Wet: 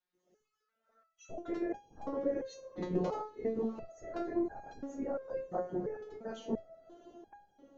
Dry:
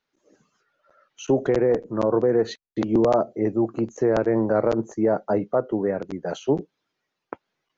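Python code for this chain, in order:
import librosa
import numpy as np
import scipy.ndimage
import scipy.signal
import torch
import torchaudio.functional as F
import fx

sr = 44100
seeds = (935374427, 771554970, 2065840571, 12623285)

y = fx.echo_diffused(x, sr, ms=647, feedback_pct=50, wet_db=-15.0)
y = fx.whisperise(y, sr, seeds[0])
y = fx.resonator_held(y, sr, hz=2.9, low_hz=180.0, high_hz=820.0)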